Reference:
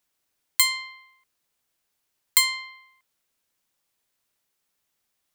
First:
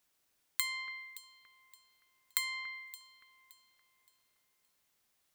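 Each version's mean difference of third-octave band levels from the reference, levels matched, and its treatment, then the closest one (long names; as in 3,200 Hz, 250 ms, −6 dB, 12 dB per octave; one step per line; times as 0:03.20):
4.0 dB: dynamic equaliser 1,700 Hz, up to +6 dB, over −37 dBFS, Q 1.2
downward compressor 12 to 1, threshold −31 dBFS, peak gain reduction 19.5 dB
delay that swaps between a low-pass and a high-pass 285 ms, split 2,200 Hz, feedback 56%, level −11.5 dB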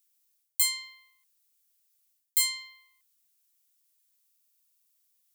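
3.0 dB: first difference
reversed playback
downward compressor 12 to 1, threshold −24 dBFS, peak gain reduction 14.5 dB
reversed playback
buffer that repeats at 0:04.25, samples 2,048, times 14
level +2.5 dB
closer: second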